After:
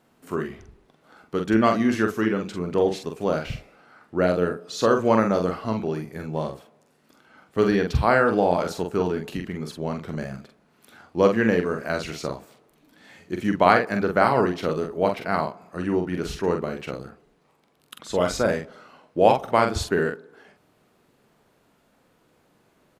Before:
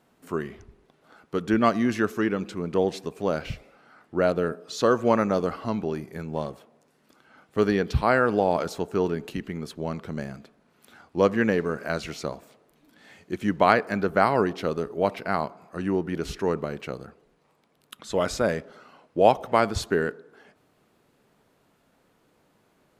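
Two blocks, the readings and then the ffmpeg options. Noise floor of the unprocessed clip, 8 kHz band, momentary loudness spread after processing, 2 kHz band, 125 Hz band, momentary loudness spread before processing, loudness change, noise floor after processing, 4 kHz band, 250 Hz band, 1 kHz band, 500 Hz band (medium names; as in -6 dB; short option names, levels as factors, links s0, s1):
-66 dBFS, +2.0 dB, 14 LU, +2.5 dB, +2.5 dB, 14 LU, +2.0 dB, -64 dBFS, +2.0 dB, +2.5 dB, +2.0 dB, +2.0 dB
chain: -filter_complex "[0:a]asplit=2[s0][s1];[s1]adelay=45,volume=0.562[s2];[s0][s2]amix=inputs=2:normalize=0,volume=1.12"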